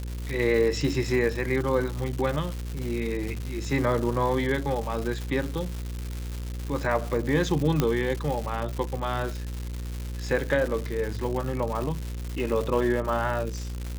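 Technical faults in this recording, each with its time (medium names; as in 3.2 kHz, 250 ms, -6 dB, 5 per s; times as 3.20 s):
buzz 60 Hz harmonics 9 -33 dBFS
crackle 290 per s -30 dBFS
7.80 s: pop -9 dBFS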